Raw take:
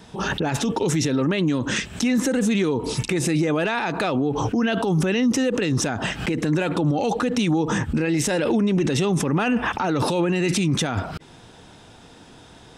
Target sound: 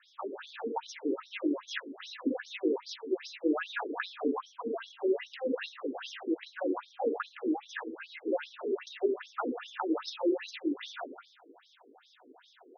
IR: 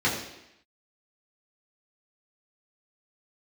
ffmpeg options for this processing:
-filter_complex "[0:a]asplit=2[link_01][link_02];[link_02]equalizer=frequency=170:width_type=o:width=0.23:gain=8[link_03];[1:a]atrim=start_sample=2205,afade=type=out:start_time=0.33:duration=0.01,atrim=end_sample=14994,asetrate=33957,aresample=44100[link_04];[link_03][link_04]afir=irnorm=-1:irlink=0,volume=-17dB[link_05];[link_01][link_05]amix=inputs=2:normalize=0,afftfilt=real='re*between(b*sr/1024,330*pow(4700/330,0.5+0.5*sin(2*PI*2.5*pts/sr))/1.41,330*pow(4700/330,0.5+0.5*sin(2*PI*2.5*pts/sr))*1.41)':imag='im*between(b*sr/1024,330*pow(4700/330,0.5+0.5*sin(2*PI*2.5*pts/sr))/1.41,330*pow(4700/330,0.5+0.5*sin(2*PI*2.5*pts/sr))*1.41)':win_size=1024:overlap=0.75,volume=-7dB"

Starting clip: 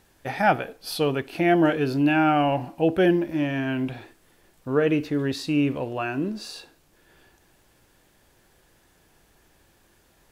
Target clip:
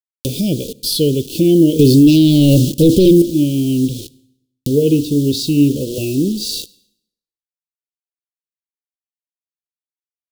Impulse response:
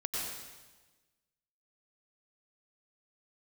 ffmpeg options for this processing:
-filter_complex "[0:a]asettb=1/sr,asplit=3[link_01][link_02][link_03];[link_01]atrim=end=4.694[link_04];[link_02]atrim=start=4.69:end=5.98,asetpts=PTS-STARTPTS,afade=type=in:duration=0.004:curve=qsin,afade=type=out:start_time=1.286:duration=0.004:curve=qsin,bandreject=frequency=60:width_type=h:width=6,bandreject=frequency=120:width_type=h:width=6,bandreject=frequency=180:width_type=h:width=6,bandreject=frequency=240:width_type=h:width=6,bandreject=frequency=300:width_type=h:width=6,bandreject=frequency=360:width_type=h:width=6,bandreject=frequency=420:width_type=h:width=6,bandreject=frequency=480:width_type=h:width=6[link_05];[link_03]atrim=start=5.976[link_06];[link_04][link_05]acrossfade=duration=0.004:curve1=hsin:curve2=qsin[link_07];[link_07][link_06]acrossfade=duration=0.004:curve1=qsin:curve2=hsin,acrusher=bits=6:mix=0:aa=0.000001,asettb=1/sr,asplit=3[link_08][link_09][link_10];[link_08]atrim=end=1.794[link_11];[link_09]atrim=start=1.79:end=3.22,asetpts=PTS-STARTPTS,afade=type=in:duration=0.004:curve=qsin,afade=type=out:start_time=1.426:duration=0.004:curve=qsin,aeval=exprs='0.335*sin(PI/2*2*val(0)/0.335)':channel_layout=same[link_12];[link_10]atrim=start=3.216[link_13];[link_11][link_12]acrossfade=duration=0.004:curve1=hsin:curve2=qsin[link_14];[link_14][link_13]acrossfade=duration=0.004:curve1=qsin:curve2=hsin,asuperstop=centerf=1300:order=12:qfactor=0.5,equalizer=frequency=780:width=1.3:gain=-12.5,acompressor=mode=upward:threshold=-27dB:ratio=2.5,asplit=2[link_15][link_16];[1:a]atrim=start_sample=2205,asetrate=74970,aresample=44100[link_17];[link_16][link_17]afir=irnorm=-1:irlink=0,volume=-20.5dB[link_18];[link_15][link_18]amix=inputs=2:normalize=0,alimiter=level_in=13dB:limit=-1dB:release=50:level=0:latency=1,volume=-1dB"

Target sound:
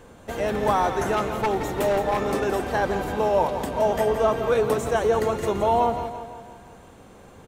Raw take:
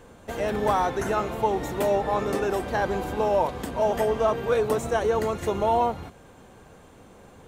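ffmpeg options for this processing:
ffmpeg -i in.wav -filter_complex "[0:a]asettb=1/sr,asplit=3[link_01][link_02][link_03];[link_01]atrim=end=1.124[link_04];[link_02]atrim=start=1.12:end=2.51,asetpts=PTS-STARTPTS,afade=type=in:duration=0.004:curve=qsin,afade=type=out:start_time=1.386:duration=0.004:curve=qsin,aeval=exprs='0.133*(abs(mod(val(0)/0.133+3,4)-2)-1)':channel_layout=same[link_05];[link_03]atrim=start=2.506[link_06];[link_04][link_05]acrossfade=duration=0.004:curve1=hsin:curve2=qsin[link_07];[link_07][link_06]acrossfade=duration=0.004:curve1=qsin:curve2=hsin,aecho=1:1:169|338|507|676|845|1014:0.316|0.171|0.0922|0.0498|0.0269|0.0145,volume=1.5dB" out.wav

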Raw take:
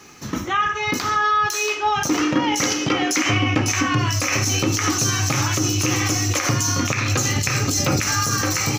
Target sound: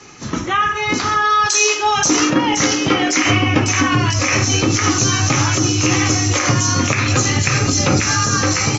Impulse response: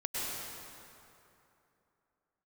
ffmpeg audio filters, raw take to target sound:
-filter_complex "[0:a]asettb=1/sr,asplit=3[link_01][link_02][link_03];[link_01]atrim=end=1.304[link_04];[link_02]atrim=start=1.3:end=2.3,asetpts=PTS-STARTPTS,afade=type=in:duration=0.004:curve=qsin,afade=type=out:start_time=0.996:duration=0.004:curve=qsin,bass=frequency=250:gain=-3,treble=frequency=4000:gain=10[link_05];[link_03]atrim=start=2.296[link_06];[link_04][link_05]acrossfade=duration=0.004:curve1=hsin:curve2=qsin[link_07];[link_07][link_06]acrossfade=duration=0.004:curve1=qsin:curve2=hsin,acrossover=split=390|7600[link_08][link_09][link_10];[link_10]asoftclip=type=tanh:threshold=-26dB[link_11];[link_08][link_09][link_11]amix=inputs=3:normalize=0,volume=3.5dB" -ar 22050 -c:a aac -b:a 24k

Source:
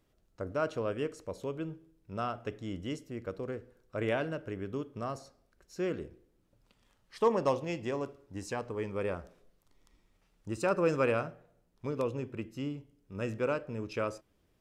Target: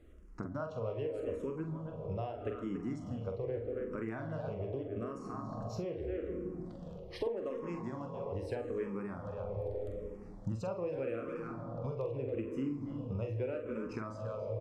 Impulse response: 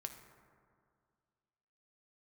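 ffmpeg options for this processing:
-filter_complex "[0:a]lowshelf=frequency=75:gain=6,asplit=2[link_01][link_02];[link_02]adelay=280,highpass=300,lowpass=3400,asoftclip=type=hard:threshold=-25.5dB,volume=-9dB[link_03];[link_01][link_03]amix=inputs=2:normalize=0,asplit=2[link_04][link_05];[1:a]atrim=start_sample=2205,asetrate=22932,aresample=44100,highshelf=frequency=5700:gain=10[link_06];[link_05][link_06]afir=irnorm=-1:irlink=0,volume=2.5dB[link_07];[link_04][link_07]amix=inputs=2:normalize=0,acompressor=threshold=-38dB:ratio=16,lowpass=frequency=1100:poles=1,asplit=2[link_08][link_09];[link_09]adelay=45,volume=-7dB[link_10];[link_08][link_10]amix=inputs=2:normalize=0,asplit=2[link_11][link_12];[link_12]afreqshift=-0.81[link_13];[link_11][link_13]amix=inputs=2:normalize=1,volume=6.5dB"

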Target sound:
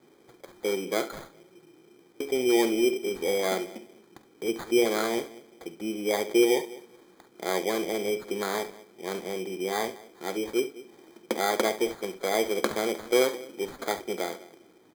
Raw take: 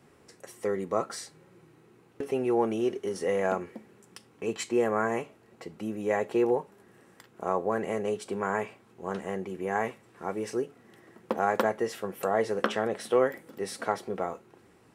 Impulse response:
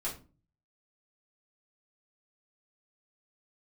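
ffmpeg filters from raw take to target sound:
-filter_complex "[0:a]highpass=210,equalizer=frequency=340:width_type=q:width=4:gain=7,equalizer=frequency=1100:width_type=q:width=4:gain=-5,equalizer=frequency=2600:width_type=q:width=4:gain=-9,lowpass=frequency=9900:width=0.5412,lowpass=frequency=9900:width=1.3066,asplit=2[link_01][link_02];[link_02]adelay=204,lowpass=frequency=970:poles=1,volume=-18dB,asplit=2[link_03][link_04];[link_04]adelay=204,lowpass=frequency=970:poles=1,volume=0.24[link_05];[link_03][link_05]amix=inputs=2:normalize=0[link_06];[link_01][link_06]amix=inputs=2:normalize=0,adynamicsmooth=sensitivity=7:basefreq=6600,acrusher=samples=16:mix=1:aa=0.000001,asplit=2[link_07][link_08];[link_08]aecho=0:1:48|69:0.168|0.188[link_09];[link_07][link_09]amix=inputs=2:normalize=0"

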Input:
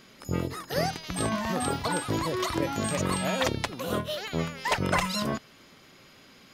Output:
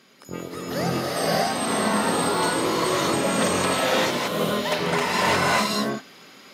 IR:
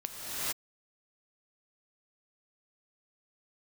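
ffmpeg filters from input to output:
-filter_complex "[0:a]highpass=190[link_01];[1:a]atrim=start_sample=2205,asetrate=32634,aresample=44100[link_02];[link_01][link_02]afir=irnorm=-1:irlink=0,volume=-1.5dB"

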